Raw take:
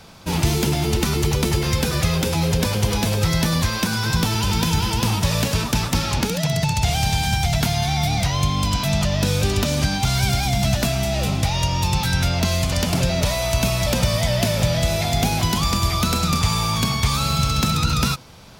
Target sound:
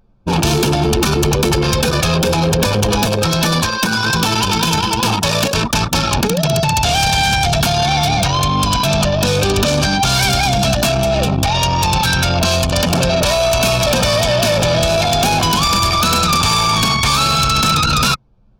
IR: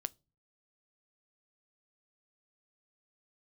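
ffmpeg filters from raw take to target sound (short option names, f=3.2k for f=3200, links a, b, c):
-filter_complex "[0:a]asettb=1/sr,asplit=3[a][b][c];[a]atrim=end=3.064[d];[b]atrim=start=3.06:end=5.57,asetpts=PTS-STARTPTS,afade=t=in:d=0.004:c=qsin,afade=t=out:st=2.506:d=0.004:c=qsin,highpass=f=150:p=1[e];[c]atrim=start=5.566[f];[d][e]acrossfade=d=0.004:c1=hsin:c2=qsin[g];[g][f]acrossfade=d=0.004:c1=qsin:c2=hsin,anlmdn=1580,lowshelf=f=200:g=-9.5,apsyclip=23.5dB,asuperstop=centerf=2000:order=20:qfactor=7.3,volume=-9.5dB"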